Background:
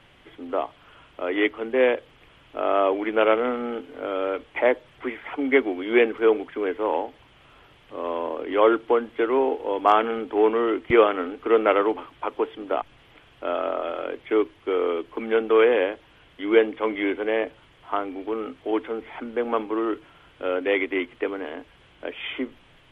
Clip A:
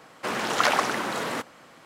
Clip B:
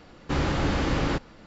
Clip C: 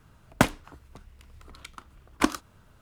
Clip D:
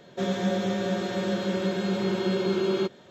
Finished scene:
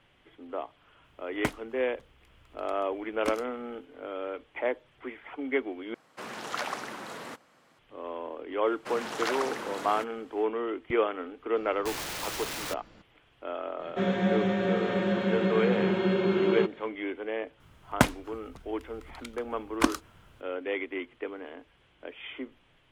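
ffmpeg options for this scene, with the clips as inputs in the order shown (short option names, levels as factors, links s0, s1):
-filter_complex "[3:a]asplit=2[s0][s1];[1:a]asplit=2[s2][s3];[0:a]volume=0.335[s4];[2:a]aeval=exprs='(mod(20*val(0)+1,2)-1)/20':c=same[s5];[4:a]highshelf=f=3600:t=q:w=1.5:g=-11.5[s6];[s4]asplit=2[s7][s8];[s7]atrim=end=5.944[s9];[s2]atrim=end=1.85,asetpts=PTS-STARTPTS,volume=0.266[s10];[s8]atrim=start=7.786[s11];[s0]atrim=end=2.81,asetpts=PTS-STARTPTS,volume=0.282,afade=t=in:d=0.004:c=hsin,afade=t=out:st=2.806:d=0.004:c=hsin,adelay=1040[s12];[s3]atrim=end=1.85,asetpts=PTS-STARTPTS,volume=0.335,afade=t=in:d=0.05,afade=t=out:st=1.8:d=0.05,adelay=8620[s13];[s5]atrim=end=1.46,asetpts=PTS-STARTPTS,volume=0.531,afade=t=in:d=0.004:c=hsin,afade=t=out:st=1.456:d=0.004:c=hsin,adelay=11560[s14];[s6]atrim=end=3.1,asetpts=PTS-STARTPTS,afade=t=in:d=0.004:c=hsin,afade=t=out:st=3.096:d=0.004:c=hsin,adelay=13790[s15];[s1]atrim=end=2.81,asetpts=PTS-STARTPTS,volume=0.891,afade=t=in:d=0.004:c=hsin,afade=t=out:st=2.806:d=0.004:c=hsin,adelay=17600[s16];[s9][s10]acrossfade=d=0.004:c1=hsin:c2=hsin[s17];[s17][s11]acrossfade=d=0.004:c1=hsin:c2=hsin[s18];[s18][s12][s13][s14][s15][s16]amix=inputs=6:normalize=0"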